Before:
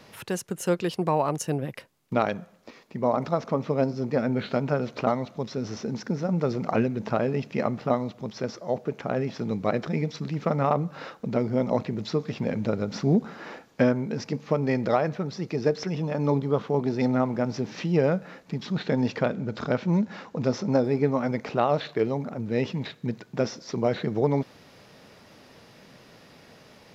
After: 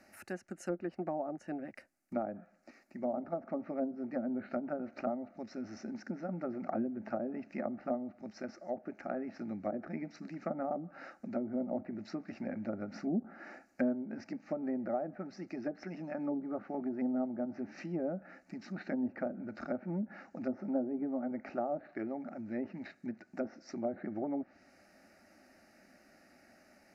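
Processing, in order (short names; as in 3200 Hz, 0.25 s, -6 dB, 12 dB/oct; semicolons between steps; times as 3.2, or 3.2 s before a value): low shelf 110 Hz -4.5 dB; fixed phaser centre 680 Hz, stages 8; treble ducked by the level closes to 660 Hz, closed at -24 dBFS; gain -7 dB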